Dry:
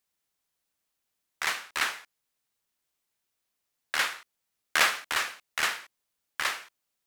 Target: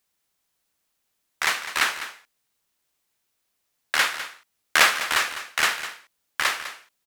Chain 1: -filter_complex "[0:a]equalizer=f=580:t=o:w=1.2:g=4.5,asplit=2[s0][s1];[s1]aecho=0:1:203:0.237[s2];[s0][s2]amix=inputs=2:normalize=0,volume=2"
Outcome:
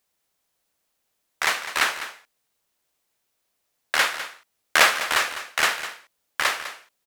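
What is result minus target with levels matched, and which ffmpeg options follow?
500 Hz band +3.5 dB
-filter_complex "[0:a]asplit=2[s0][s1];[s1]aecho=0:1:203:0.237[s2];[s0][s2]amix=inputs=2:normalize=0,volume=2"

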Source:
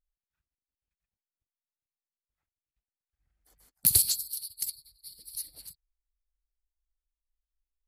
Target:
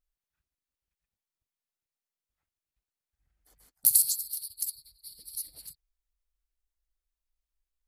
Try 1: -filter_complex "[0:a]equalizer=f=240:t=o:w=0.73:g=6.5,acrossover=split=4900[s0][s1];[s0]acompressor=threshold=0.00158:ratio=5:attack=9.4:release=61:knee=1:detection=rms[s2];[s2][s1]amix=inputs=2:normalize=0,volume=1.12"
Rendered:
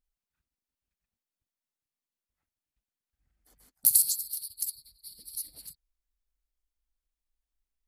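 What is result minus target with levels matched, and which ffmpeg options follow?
250 Hz band +3.0 dB
-filter_complex "[0:a]acrossover=split=4900[s0][s1];[s0]acompressor=threshold=0.00158:ratio=5:attack=9.4:release=61:knee=1:detection=rms[s2];[s2][s1]amix=inputs=2:normalize=0,volume=1.12"

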